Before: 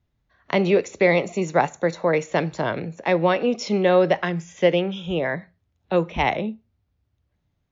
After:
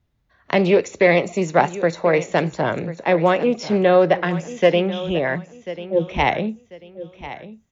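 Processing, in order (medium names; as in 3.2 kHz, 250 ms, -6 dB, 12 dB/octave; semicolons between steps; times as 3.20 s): 2.55–4.29 s: treble shelf 5.2 kHz -9 dB; 5.38–6.07 s: loudest bins only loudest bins 4; feedback delay 1042 ms, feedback 29%, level -15 dB; loudspeaker Doppler distortion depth 0.13 ms; trim +3 dB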